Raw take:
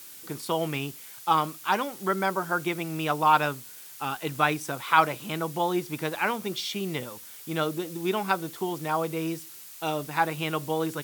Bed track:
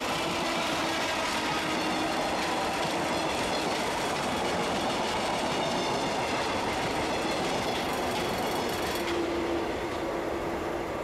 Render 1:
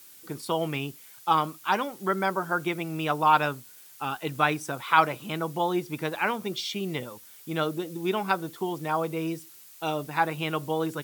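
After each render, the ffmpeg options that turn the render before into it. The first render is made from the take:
-af "afftdn=nr=6:nf=-45"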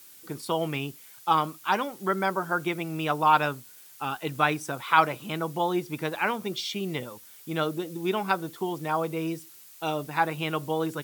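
-af anull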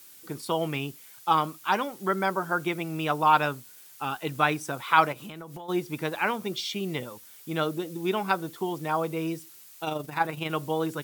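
-filter_complex "[0:a]asplit=3[s0][s1][s2];[s0]afade=t=out:st=5.12:d=0.02[s3];[s1]acompressor=threshold=0.0158:ratio=20:attack=3.2:release=140:knee=1:detection=peak,afade=t=in:st=5.12:d=0.02,afade=t=out:st=5.68:d=0.02[s4];[s2]afade=t=in:st=5.68:d=0.02[s5];[s3][s4][s5]amix=inputs=3:normalize=0,asettb=1/sr,asplit=3[s6][s7][s8];[s6]atrim=end=9.844[s9];[s7]atrim=start=9.84:end=10.5,asetpts=PTS-STARTPTS,afade=t=in:d=0.004:c=qsin,afade=t=out:st=0.656:d=0.004:c=qsin,tremolo=f=24:d=0.462[s10];[s8]atrim=start=10.496[s11];[s9][s10]acrossfade=d=0.004:c1=hsin:c2=qsin[s12];[s12][s11]acrossfade=d=0.004:c1=qsin:c2=hsin"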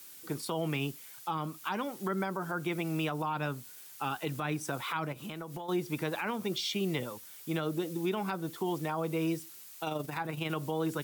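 -filter_complex "[0:a]acrossover=split=290[s0][s1];[s1]acompressor=threshold=0.0355:ratio=5[s2];[s0][s2]amix=inputs=2:normalize=0,alimiter=limit=0.0708:level=0:latency=1:release=43"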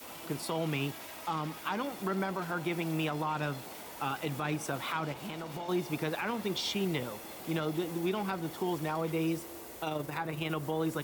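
-filter_complex "[1:a]volume=0.126[s0];[0:a][s0]amix=inputs=2:normalize=0"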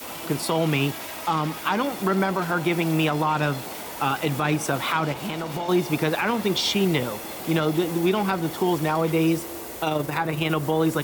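-af "volume=3.35"

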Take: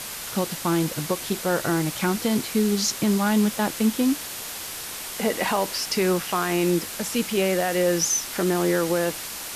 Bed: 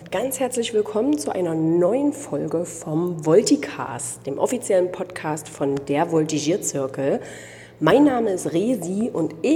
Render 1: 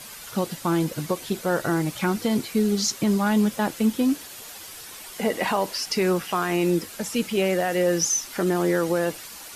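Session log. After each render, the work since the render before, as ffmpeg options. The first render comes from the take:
-af "afftdn=nr=9:nf=-35"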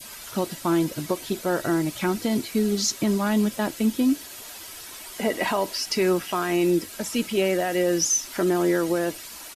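-af "adynamicequalizer=threshold=0.0112:dfrequency=1100:dqfactor=0.91:tfrequency=1100:tqfactor=0.91:attack=5:release=100:ratio=0.375:range=2:mode=cutabove:tftype=bell,aecho=1:1:3.1:0.32"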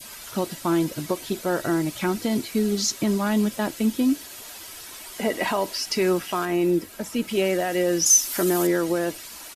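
-filter_complex "[0:a]asettb=1/sr,asplit=3[s0][s1][s2];[s0]atrim=end=6.454[s3];[s1]atrim=start=6.45:end=7.28,asetpts=PTS-STARTPTS,afade=t=in:d=0.004:c=qsin,afade=t=out:st=0.826:d=0.004:c=qsin,equalizer=f=6100:w=0.37:g=-6.5[s4];[s2]atrim=start=7.276[s5];[s3][s4]acrossfade=d=0.004:c1=hsin:c2=qsin[s6];[s6][s5]acrossfade=d=0.004:c1=qsin:c2=hsin,asettb=1/sr,asplit=3[s7][s8][s9];[s7]atrim=end=8.064[s10];[s8]atrim=start=8.06:end=8.67,asetpts=PTS-STARTPTS,afade=t=in:d=0.004:c=qsin,afade=t=out:st=0.606:d=0.004:c=qsin,aemphasis=mode=production:type=50kf[s11];[s9]atrim=start=8.666[s12];[s10][s11]acrossfade=d=0.004:c1=hsin:c2=qsin[s13];[s13][s12]acrossfade=d=0.004:c1=qsin:c2=hsin"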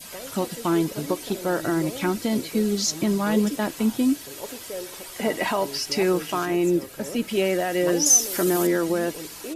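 -filter_complex "[1:a]volume=0.158[s0];[0:a][s0]amix=inputs=2:normalize=0"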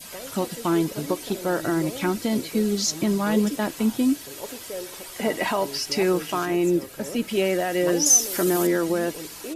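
-af anull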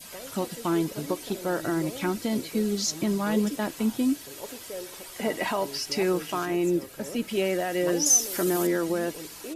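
-af "volume=0.668"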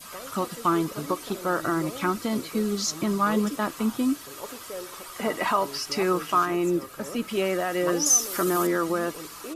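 -af "equalizer=f=1200:w=3.4:g=14"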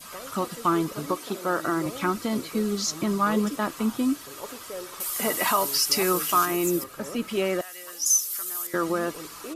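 -filter_complex "[0:a]asettb=1/sr,asplit=3[s0][s1][s2];[s0]atrim=end=1.174[s3];[s1]atrim=start=1.17:end=1.86,asetpts=PTS-STARTPTS,afade=t=in:d=0.004:c=qsin,afade=t=out:st=0.686:d=0.004:c=qsin,highpass=160[s4];[s2]atrim=start=1.856[s5];[s3][s4]acrossfade=d=0.004:c1=hsin:c2=qsin[s6];[s6][s5]acrossfade=d=0.004:c1=qsin:c2=hsin,asettb=1/sr,asplit=3[s7][s8][s9];[s7]atrim=end=5.004[s10];[s8]atrim=start=5:end=6.84,asetpts=PTS-STARTPTS,afade=t=in:d=0.004:c=qsin,afade=t=out:st=1.836:d=0.004:c=qsin,aemphasis=mode=production:type=75fm[s11];[s9]atrim=start=6.836[s12];[s10][s11]acrossfade=d=0.004:c1=hsin:c2=qsin[s13];[s13][s12]acrossfade=d=0.004:c1=qsin:c2=hsin,asettb=1/sr,asplit=3[s14][s15][s16];[s14]atrim=end=7.614[s17];[s15]atrim=start=7.61:end=8.74,asetpts=PTS-STARTPTS,afade=t=in:d=0.004:c=qsin,afade=t=out:st=1.126:d=0.004:c=qsin,aderivative[s18];[s16]atrim=start=8.736[s19];[s17][s18]acrossfade=d=0.004:c1=hsin:c2=qsin[s20];[s20][s19]acrossfade=d=0.004:c1=qsin:c2=hsin"

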